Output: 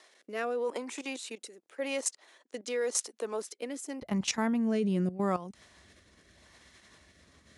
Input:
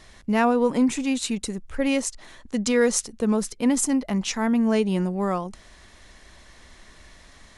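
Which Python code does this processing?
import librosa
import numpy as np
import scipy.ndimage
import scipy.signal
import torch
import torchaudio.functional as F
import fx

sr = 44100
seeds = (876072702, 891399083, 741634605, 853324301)

y = fx.rotary(x, sr, hz=0.85)
y = fx.level_steps(y, sr, step_db=14)
y = fx.highpass(y, sr, hz=fx.steps((0.0, 370.0), (4.02, 67.0)), slope=24)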